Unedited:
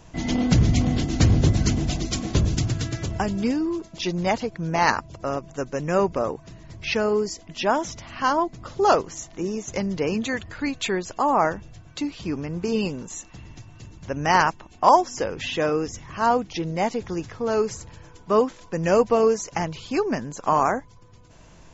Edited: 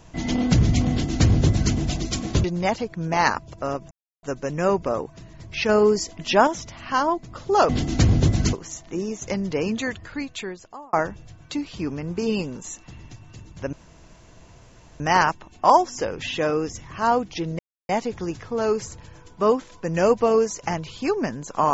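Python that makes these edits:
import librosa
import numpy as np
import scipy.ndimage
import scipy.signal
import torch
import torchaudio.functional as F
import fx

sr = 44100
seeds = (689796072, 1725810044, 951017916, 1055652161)

y = fx.edit(x, sr, fx.duplicate(start_s=0.9, length_s=0.84, to_s=8.99),
    fx.cut(start_s=2.44, length_s=1.62),
    fx.insert_silence(at_s=5.53, length_s=0.32),
    fx.clip_gain(start_s=6.99, length_s=0.78, db=5.0),
    fx.fade_out_span(start_s=10.3, length_s=1.09),
    fx.insert_room_tone(at_s=14.19, length_s=1.27),
    fx.insert_silence(at_s=16.78, length_s=0.3), tone=tone)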